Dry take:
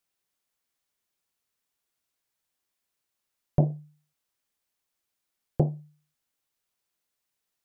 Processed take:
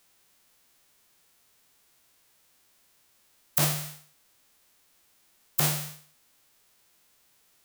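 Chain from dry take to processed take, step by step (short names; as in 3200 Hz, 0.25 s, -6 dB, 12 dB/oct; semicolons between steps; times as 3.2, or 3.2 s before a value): spectral whitening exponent 0.1; compressor 20:1, threshold -33 dBFS, peak gain reduction 18 dB; maximiser +20.5 dB; gain -2.5 dB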